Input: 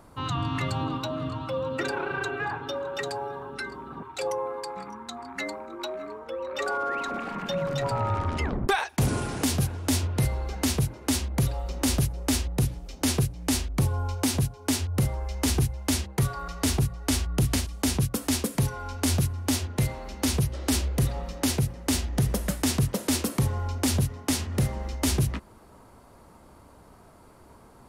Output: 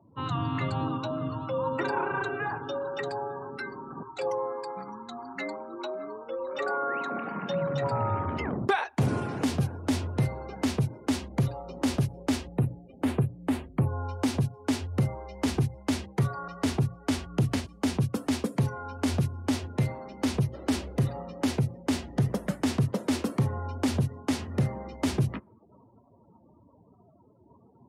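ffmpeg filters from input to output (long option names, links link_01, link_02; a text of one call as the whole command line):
ffmpeg -i in.wav -filter_complex "[0:a]asettb=1/sr,asplit=3[link_01][link_02][link_03];[link_01]atrim=end=1.584[link_04];[link_02]atrim=start=1.58:end=2.22,asetpts=PTS-STARTPTS,afade=type=in:duration=0.004:curve=qsin,afade=type=out:start_time=0.636:duration=0.004:curve=qsin,equalizer=frequency=970:width_type=o:width=0.29:gain=11[link_05];[link_03]atrim=start=2.216[link_06];[link_04][link_05]acrossfade=duration=0.004:curve1=hsin:curve2=qsin[link_07];[link_07][link_06]acrossfade=duration=0.004:curve1=qsin:curve2=hsin,asettb=1/sr,asplit=3[link_08][link_09][link_10];[link_08]atrim=end=12.554[link_11];[link_09]atrim=start=12.55:end=13.99,asetpts=PTS-STARTPTS,afade=type=in:duration=0.004:curve=qsin,afade=type=out:start_time=1.436:duration=0.004:curve=qsin,equalizer=frequency=5600:width=0.97:gain=-14[link_12];[link_10]atrim=start=13.986[link_13];[link_11][link_12]acrossfade=duration=0.004:curve1=hsin:curve2=qsin[link_14];[link_14][link_13]acrossfade=duration=0.004:curve1=qsin:curve2=hsin,afftdn=noise_reduction=35:noise_floor=-46,highpass=frequency=98:width=0.5412,highpass=frequency=98:width=1.3066,aemphasis=mode=reproduction:type=75kf" out.wav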